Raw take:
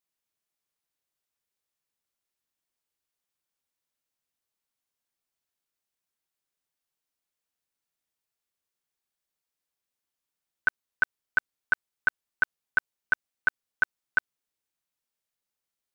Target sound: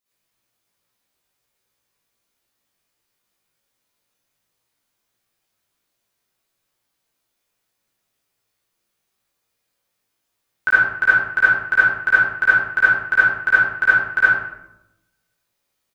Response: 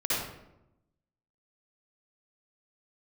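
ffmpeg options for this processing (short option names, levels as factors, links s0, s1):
-filter_complex "[0:a]asplit=2[s0][s1];[s1]adelay=18,volume=0.668[s2];[s0][s2]amix=inputs=2:normalize=0[s3];[1:a]atrim=start_sample=2205[s4];[s3][s4]afir=irnorm=-1:irlink=0,volume=1.41"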